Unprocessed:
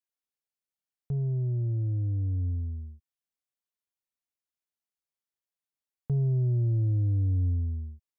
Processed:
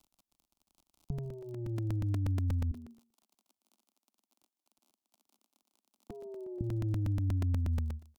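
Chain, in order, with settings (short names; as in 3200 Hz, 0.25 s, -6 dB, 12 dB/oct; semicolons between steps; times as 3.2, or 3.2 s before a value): crackle 37/s -47 dBFS; 2.71–6.61 elliptic high-pass 210 Hz, stop band 40 dB; fixed phaser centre 470 Hz, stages 6; compressor, threshold -37 dBFS, peak gain reduction 7.5 dB; low shelf 320 Hz +10.5 dB; echo 0.155 s -21 dB; crackling interface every 0.12 s, samples 128, repeat, from 0.34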